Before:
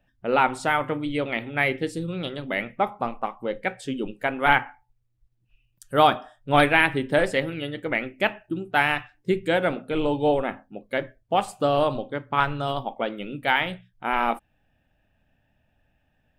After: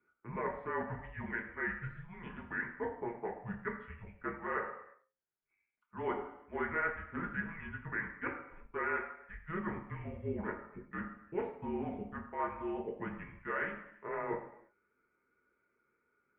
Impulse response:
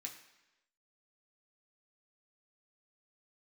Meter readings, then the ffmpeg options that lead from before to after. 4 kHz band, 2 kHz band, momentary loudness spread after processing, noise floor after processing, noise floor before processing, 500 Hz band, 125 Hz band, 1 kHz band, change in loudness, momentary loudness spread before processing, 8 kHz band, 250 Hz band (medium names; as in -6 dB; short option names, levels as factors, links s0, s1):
under -30 dB, -13.5 dB, 9 LU, -81 dBFS, -70 dBFS, -15.5 dB, -13.0 dB, -17.0 dB, -15.0 dB, 11 LU, under -30 dB, -13.5 dB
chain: -filter_complex "[0:a]areverse,acompressor=threshold=0.0316:ratio=4,areverse[s0];[1:a]atrim=start_sample=2205,afade=t=out:st=0.41:d=0.01,atrim=end_sample=18522[s1];[s0][s1]afir=irnorm=-1:irlink=0,highpass=f=460:t=q:w=0.5412,highpass=f=460:t=q:w=1.307,lowpass=f=2300:t=q:w=0.5176,lowpass=f=2300:t=q:w=0.7071,lowpass=f=2300:t=q:w=1.932,afreqshift=-340,volume=1.12"